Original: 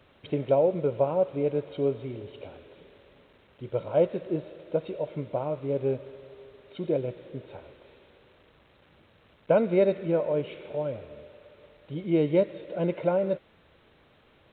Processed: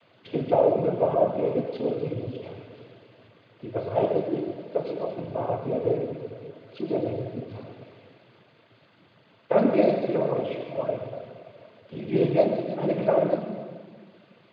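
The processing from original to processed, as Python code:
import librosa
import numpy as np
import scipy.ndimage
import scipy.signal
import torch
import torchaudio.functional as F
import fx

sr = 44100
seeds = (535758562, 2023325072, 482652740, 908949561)

y = fx.rev_fdn(x, sr, rt60_s=1.7, lf_ratio=1.3, hf_ratio=1.0, size_ms=78.0, drr_db=0.5)
y = fx.noise_vocoder(y, sr, seeds[0], bands=16)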